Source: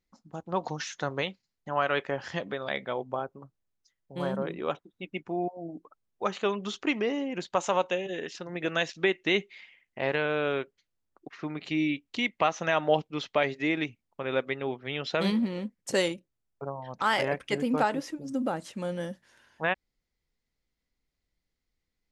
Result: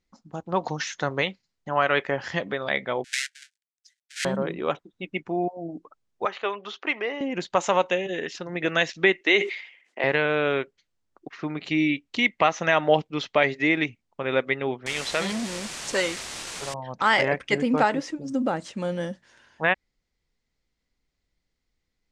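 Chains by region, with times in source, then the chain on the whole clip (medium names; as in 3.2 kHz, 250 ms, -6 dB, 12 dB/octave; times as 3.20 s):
3.04–4.25 s: square wave that keeps the level + steep high-pass 1.5 kHz 96 dB/octave + treble shelf 5.9 kHz +9.5 dB
6.25–7.21 s: high-pass 550 Hz + distance through air 190 m
9.21–10.04 s: high-pass 290 Hz 24 dB/octave + decay stretcher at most 98 dB/s
14.86–16.74 s: bass shelf 400 Hz -8 dB + word length cut 6-bit, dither triangular + transformer saturation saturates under 1.3 kHz
whole clip: dynamic bell 2 kHz, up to +5 dB, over -47 dBFS, Q 3.5; low-pass 8.3 kHz 24 dB/octave; trim +4.5 dB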